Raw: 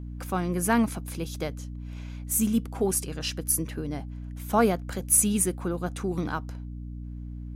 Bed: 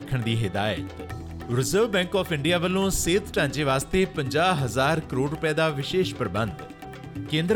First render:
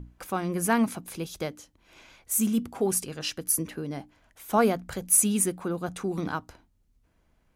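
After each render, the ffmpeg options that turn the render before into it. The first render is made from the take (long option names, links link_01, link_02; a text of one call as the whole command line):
ffmpeg -i in.wav -af "bandreject=frequency=60:width_type=h:width=6,bandreject=frequency=120:width_type=h:width=6,bandreject=frequency=180:width_type=h:width=6,bandreject=frequency=240:width_type=h:width=6,bandreject=frequency=300:width_type=h:width=6" out.wav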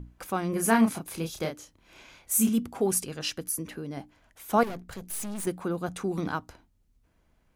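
ffmpeg -i in.wav -filter_complex "[0:a]asettb=1/sr,asplit=3[link_01][link_02][link_03];[link_01]atrim=end=0.504[link_04];[link_02]atrim=start=0.5:end=2.49,asetpts=PTS-STARTPTS,afade=type=in:duration=0.004:curve=qsin,afade=type=out:start_time=1.986:duration=0.004:curve=qsin,asplit=2[link_05][link_06];[link_06]adelay=31,volume=-4.5dB[link_07];[link_05][link_07]amix=inputs=2:normalize=0,atrim=end_sample=87759[link_08];[link_03]atrim=start=2.486[link_09];[link_04][link_08]acrossfade=duration=0.004:curve1=hsin:curve2=qsin[link_10];[link_10][link_09]acrossfade=duration=0.004:curve1=qsin:curve2=hsin,asettb=1/sr,asplit=3[link_11][link_12][link_13];[link_11]atrim=end=3.484[link_14];[link_12]atrim=start=3.48:end=3.97,asetpts=PTS-STARTPTS,afade=type=in:duration=0.004:curve=qsin,afade=type=out:start_time=0.486:duration=0.004:curve=qsin,acompressor=threshold=-37dB:ratio=1.5:attack=3.2:release=140:knee=1:detection=peak[link_15];[link_13]atrim=start=3.966[link_16];[link_14][link_15]acrossfade=duration=0.004:curve1=hsin:curve2=qsin[link_17];[link_17][link_16]acrossfade=duration=0.004:curve1=qsin:curve2=hsin,asettb=1/sr,asplit=3[link_18][link_19][link_20];[link_18]atrim=end=4.634[link_21];[link_19]atrim=start=4.63:end=5.47,asetpts=PTS-STARTPTS,afade=type=in:duration=0.004:curve=qsin,afade=type=out:start_time=0.836:duration=0.004:curve=qsin,aeval=exprs='(tanh(50.1*val(0)+0.7)-tanh(0.7))/50.1':channel_layout=same[link_22];[link_20]atrim=start=5.466[link_23];[link_21][link_22]acrossfade=duration=0.004:curve1=hsin:curve2=qsin[link_24];[link_24][link_23]acrossfade=duration=0.004:curve1=qsin:curve2=hsin" out.wav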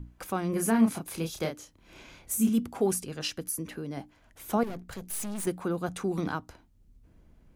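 ffmpeg -i in.wav -filter_complex "[0:a]acrossover=split=450[link_01][link_02];[link_01]acompressor=mode=upward:threshold=-46dB:ratio=2.5[link_03];[link_02]alimiter=limit=-21dB:level=0:latency=1:release=259[link_04];[link_03][link_04]amix=inputs=2:normalize=0" out.wav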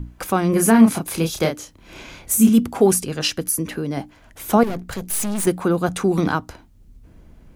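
ffmpeg -i in.wav -af "volume=11.5dB,alimiter=limit=-2dB:level=0:latency=1" out.wav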